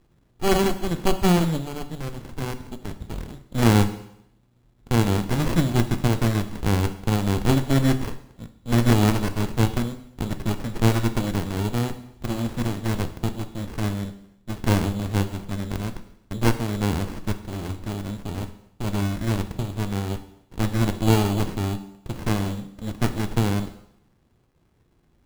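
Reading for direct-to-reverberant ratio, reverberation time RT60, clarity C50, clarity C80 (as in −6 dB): 9.0 dB, 0.75 s, 12.5 dB, 15.0 dB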